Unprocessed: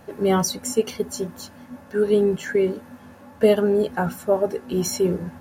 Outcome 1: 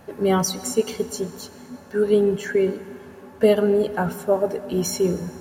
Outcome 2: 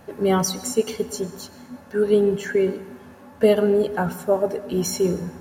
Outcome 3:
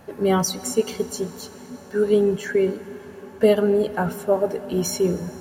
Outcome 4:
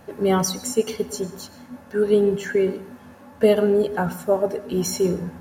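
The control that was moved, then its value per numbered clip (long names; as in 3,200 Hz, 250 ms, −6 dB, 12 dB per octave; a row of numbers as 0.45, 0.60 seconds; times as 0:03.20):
dense smooth reverb, RT60: 2.5, 1.1, 5.3, 0.52 seconds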